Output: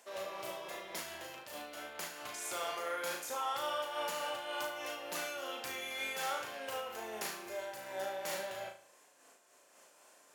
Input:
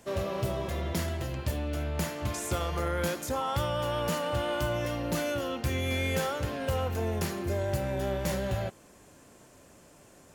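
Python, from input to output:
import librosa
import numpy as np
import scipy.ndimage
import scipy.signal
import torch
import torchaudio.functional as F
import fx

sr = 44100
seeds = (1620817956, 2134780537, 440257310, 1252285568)

p1 = scipy.signal.sosfilt(scipy.signal.butter(2, 640.0, 'highpass', fs=sr, output='sos'), x)
p2 = p1 + fx.room_flutter(p1, sr, wall_m=6.3, rt60_s=0.48, dry=0)
p3 = fx.am_noise(p2, sr, seeds[0], hz=5.7, depth_pct=65)
y = p3 * librosa.db_to_amplitude(-2.5)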